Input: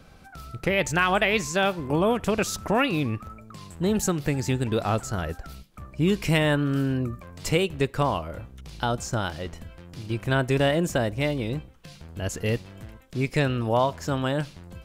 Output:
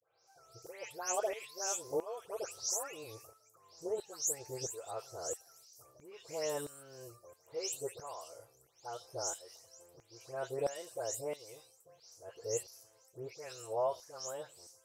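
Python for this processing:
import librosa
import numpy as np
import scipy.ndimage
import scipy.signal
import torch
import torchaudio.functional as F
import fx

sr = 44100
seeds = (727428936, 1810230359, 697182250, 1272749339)

y = fx.spec_delay(x, sr, highs='late', ms=270)
y = fx.curve_eq(y, sr, hz=(120.0, 210.0, 430.0, 1700.0, 3500.0, 5700.0, 8900.0), db=(0, -28, -5, -30, -30, -5, -13))
y = fx.filter_lfo_highpass(y, sr, shape='saw_down', hz=1.5, low_hz=510.0, high_hz=1700.0, q=0.76)
y = y * 10.0 ** (7.0 / 20.0)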